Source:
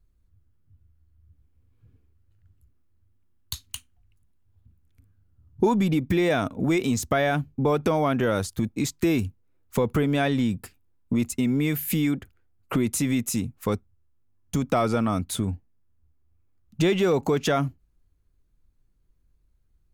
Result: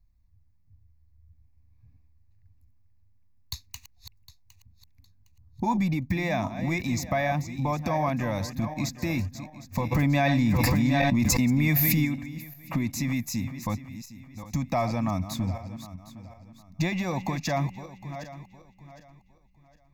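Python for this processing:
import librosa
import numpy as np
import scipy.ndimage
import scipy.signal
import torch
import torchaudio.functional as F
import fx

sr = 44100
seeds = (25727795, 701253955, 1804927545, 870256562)

y = fx.reverse_delay_fb(x, sr, ms=380, feedback_pct=52, wet_db=-11.0)
y = fx.fixed_phaser(y, sr, hz=2100.0, stages=8)
y = fx.env_flatten(y, sr, amount_pct=100, at=(9.91, 12.04), fade=0.02)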